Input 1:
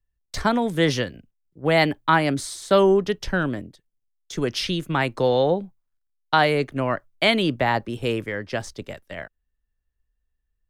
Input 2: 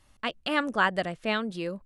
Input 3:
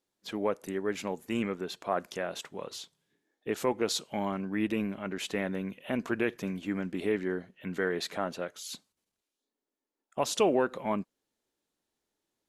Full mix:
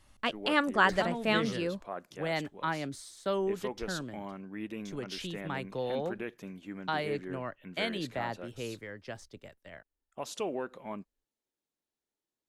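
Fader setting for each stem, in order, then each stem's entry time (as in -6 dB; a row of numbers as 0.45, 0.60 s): -14.5, -0.5, -9.5 dB; 0.55, 0.00, 0.00 s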